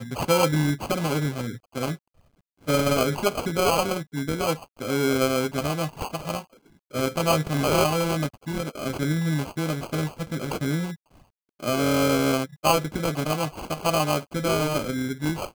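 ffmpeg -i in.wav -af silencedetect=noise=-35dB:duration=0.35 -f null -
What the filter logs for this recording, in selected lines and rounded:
silence_start: 1.95
silence_end: 2.67 | silence_duration: 0.72
silence_start: 6.42
silence_end: 6.94 | silence_duration: 0.52
silence_start: 10.94
silence_end: 11.60 | silence_duration: 0.66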